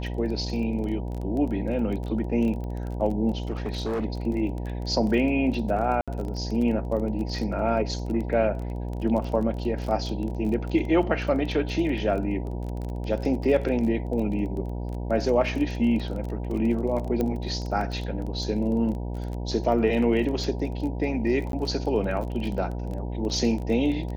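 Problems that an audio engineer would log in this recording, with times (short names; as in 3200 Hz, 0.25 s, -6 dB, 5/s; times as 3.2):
buzz 60 Hz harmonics 16 -31 dBFS
crackle 21/s -31 dBFS
3.51–4.05 clipped -24.5 dBFS
6.01–6.08 gap 66 ms
17.21 pop -15 dBFS
21.52–21.53 gap 12 ms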